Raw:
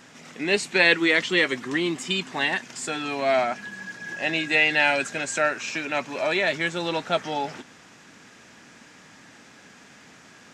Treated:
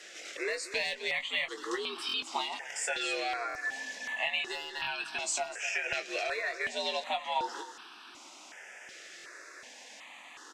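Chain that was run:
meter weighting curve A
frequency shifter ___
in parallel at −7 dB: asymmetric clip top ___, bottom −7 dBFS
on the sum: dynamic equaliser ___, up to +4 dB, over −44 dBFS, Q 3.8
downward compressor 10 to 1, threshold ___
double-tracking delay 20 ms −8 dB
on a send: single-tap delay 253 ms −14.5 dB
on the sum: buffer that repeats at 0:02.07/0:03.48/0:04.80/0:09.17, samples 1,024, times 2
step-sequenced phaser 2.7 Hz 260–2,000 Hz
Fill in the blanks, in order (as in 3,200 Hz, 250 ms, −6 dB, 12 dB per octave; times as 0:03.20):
+73 Hz, −19 dBFS, 4,900 Hz, −27 dBFS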